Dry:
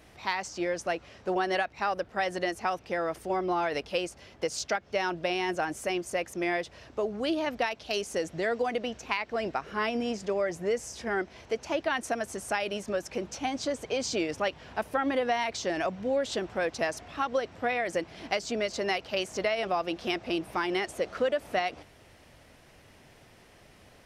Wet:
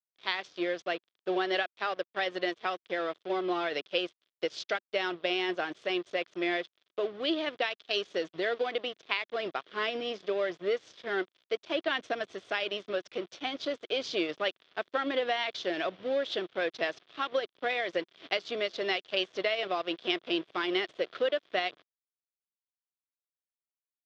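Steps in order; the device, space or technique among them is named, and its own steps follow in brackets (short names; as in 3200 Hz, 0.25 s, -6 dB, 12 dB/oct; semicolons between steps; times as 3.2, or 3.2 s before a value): 11.76–12.34 bell 120 Hz +4 dB 2.7 oct; blown loudspeaker (crossover distortion -42.5 dBFS; speaker cabinet 220–4700 Hz, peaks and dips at 230 Hz -8 dB, 360 Hz +3 dB, 870 Hz -8 dB, 3400 Hz +10 dB)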